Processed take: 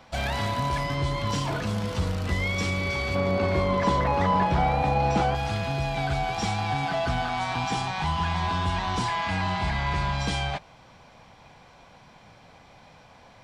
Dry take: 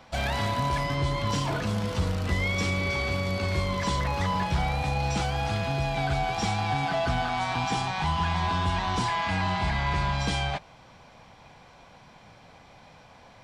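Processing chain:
0:03.15–0:05.35: drawn EQ curve 110 Hz 0 dB, 250 Hz +7 dB, 700 Hz +8 dB, 8,400 Hz −8 dB

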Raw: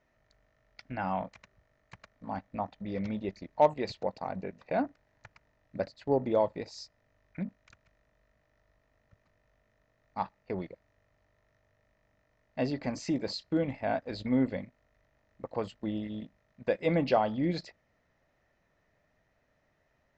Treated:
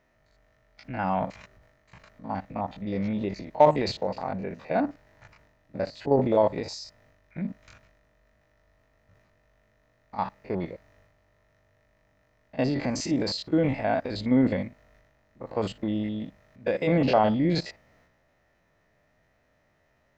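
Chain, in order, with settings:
spectrum averaged block by block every 50 ms
transient designer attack 0 dB, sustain +7 dB
level +6 dB

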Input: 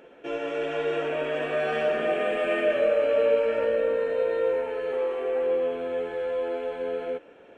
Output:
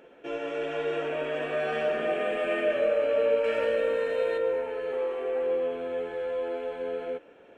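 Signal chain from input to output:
0:03.44–0:04.38: high-shelf EQ 2,000 Hz +10 dB
level −2.5 dB

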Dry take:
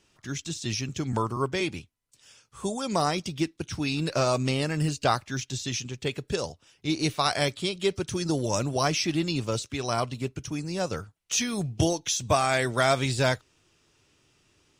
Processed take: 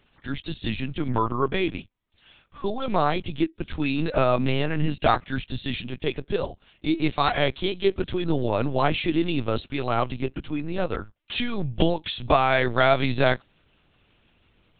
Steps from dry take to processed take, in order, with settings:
linear-prediction vocoder at 8 kHz pitch kept
level +4 dB

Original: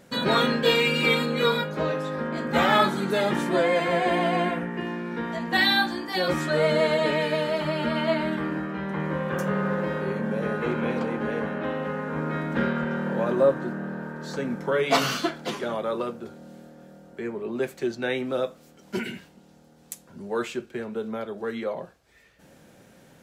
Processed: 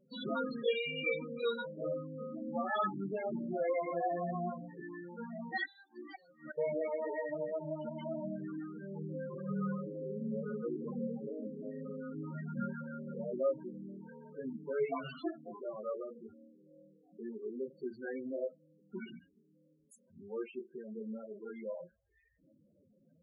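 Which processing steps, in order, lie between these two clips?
multi-voice chorus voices 4, 0.35 Hz, delay 21 ms, depth 2.5 ms
0:05.65–0:06.58: gate with flip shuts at −20 dBFS, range −27 dB
spectral peaks only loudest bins 8
level −8.5 dB

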